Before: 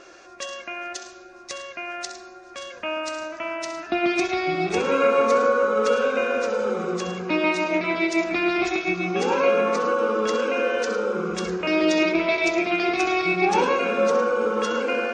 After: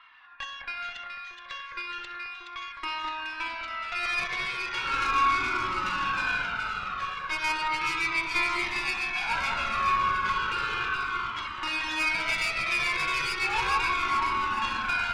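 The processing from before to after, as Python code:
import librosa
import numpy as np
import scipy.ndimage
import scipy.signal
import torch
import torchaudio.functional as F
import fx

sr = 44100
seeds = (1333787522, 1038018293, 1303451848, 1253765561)

p1 = scipy.signal.sosfilt(scipy.signal.ellip(3, 1.0, 40, [980.0, 3500.0], 'bandpass', fs=sr, output='sos'), x)
p2 = fx.tube_stage(p1, sr, drive_db=26.0, bias=0.8)
p3 = p2 + fx.echo_alternate(p2, sr, ms=211, hz=1900.0, feedback_pct=72, wet_db=-2, dry=0)
p4 = fx.comb_cascade(p3, sr, direction='falling', hz=0.35)
y = p4 * 10.0 ** (7.5 / 20.0)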